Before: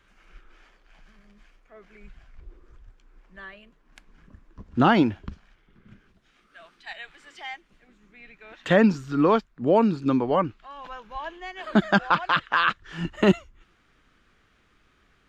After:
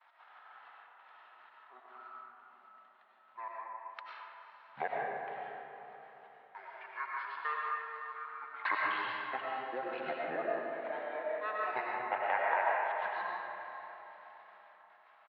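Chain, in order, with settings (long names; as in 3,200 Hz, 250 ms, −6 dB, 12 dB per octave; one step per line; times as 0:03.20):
noise gate with hold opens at −52 dBFS
spectral tilt +4.5 dB per octave
downward compressor 6 to 1, threshold −25 dBFS, peak gain reduction 12 dB
gate pattern "x.xx.xx...xxx." 151 BPM −60 dB
pitch shifter −9.5 semitones
band-pass filter 790–4,000 Hz
high-frequency loss of the air 370 metres
feedback delay with all-pass diffusion 498 ms, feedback 44%, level −13.5 dB
comb and all-pass reverb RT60 2.6 s, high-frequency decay 0.45×, pre-delay 60 ms, DRR −4 dB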